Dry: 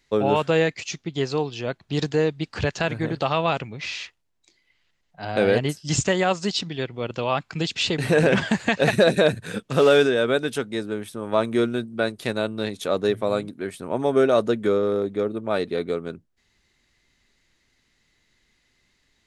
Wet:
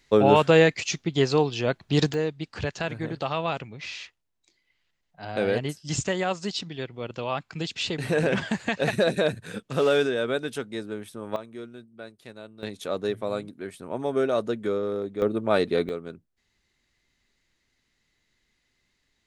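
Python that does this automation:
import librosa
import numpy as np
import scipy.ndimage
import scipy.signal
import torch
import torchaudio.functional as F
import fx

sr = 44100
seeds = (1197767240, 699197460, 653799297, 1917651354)

y = fx.gain(x, sr, db=fx.steps((0.0, 3.0), (2.14, -5.5), (11.36, -18.0), (12.63, -6.0), (15.22, 2.0), (15.89, -6.0)))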